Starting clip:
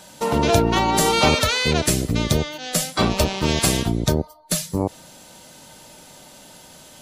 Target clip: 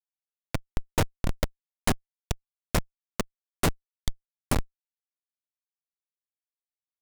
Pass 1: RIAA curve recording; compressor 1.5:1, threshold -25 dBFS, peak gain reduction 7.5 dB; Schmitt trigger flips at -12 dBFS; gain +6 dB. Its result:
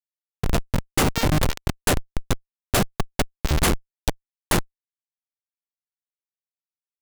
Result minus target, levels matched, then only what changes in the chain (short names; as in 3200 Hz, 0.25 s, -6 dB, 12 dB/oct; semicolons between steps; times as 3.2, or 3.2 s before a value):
compressor: peak gain reduction -3 dB
change: compressor 1.5:1, threshold -34.5 dBFS, peak gain reduction 10.5 dB